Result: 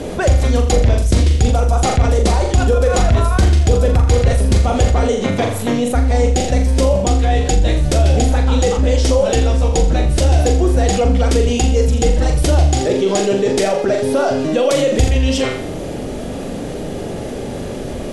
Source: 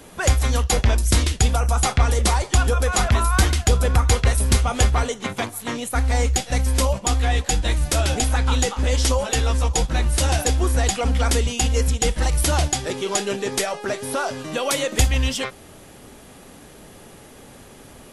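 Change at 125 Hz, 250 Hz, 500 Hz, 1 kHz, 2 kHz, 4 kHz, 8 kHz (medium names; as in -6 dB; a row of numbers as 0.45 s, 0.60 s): +6.5 dB, +10.0 dB, +10.5 dB, +4.0 dB, +0.5 dB, +0.5 dB, -1.5 dB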